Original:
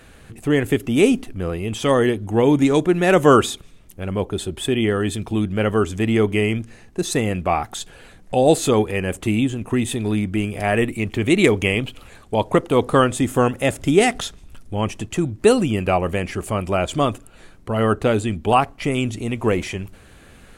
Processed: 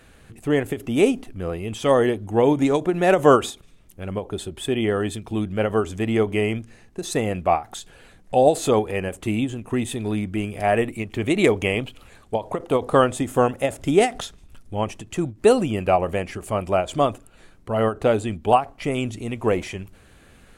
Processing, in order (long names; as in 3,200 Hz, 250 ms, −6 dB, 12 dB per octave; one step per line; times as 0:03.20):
dynamic equaliser 680 Hz, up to +7 dB, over −31 dBFS, Q 1.1
every ending faded ahead of time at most 240 dB per second
level −4.5 dB